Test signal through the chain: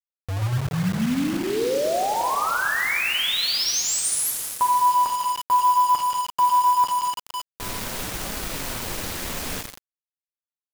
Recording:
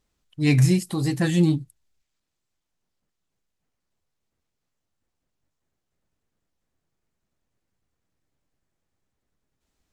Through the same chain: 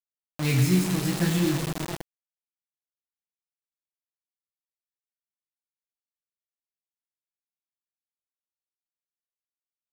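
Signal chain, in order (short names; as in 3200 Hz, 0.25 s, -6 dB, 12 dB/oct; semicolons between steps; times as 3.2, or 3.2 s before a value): Schroeder reverb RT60 2.4 s, combs from 33 ms, DRR 3 dB; flange 0.48 Hz, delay 4.6 ms, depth 8.2 ms, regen -31%; bit-crush 5-bit; gain -1 dB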